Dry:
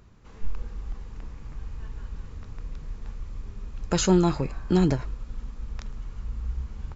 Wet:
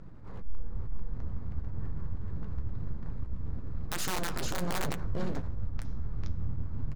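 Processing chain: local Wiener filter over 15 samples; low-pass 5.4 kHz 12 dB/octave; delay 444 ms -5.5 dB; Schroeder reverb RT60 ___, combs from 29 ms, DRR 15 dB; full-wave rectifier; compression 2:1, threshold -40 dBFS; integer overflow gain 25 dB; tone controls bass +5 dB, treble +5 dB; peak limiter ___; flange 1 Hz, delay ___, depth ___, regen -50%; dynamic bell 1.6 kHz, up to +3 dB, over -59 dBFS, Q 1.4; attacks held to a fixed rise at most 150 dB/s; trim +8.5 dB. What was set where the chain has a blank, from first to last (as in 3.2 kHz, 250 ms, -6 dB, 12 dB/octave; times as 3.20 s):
0.5 s, -25 dBFS, 4.9 ms, 9.1 ms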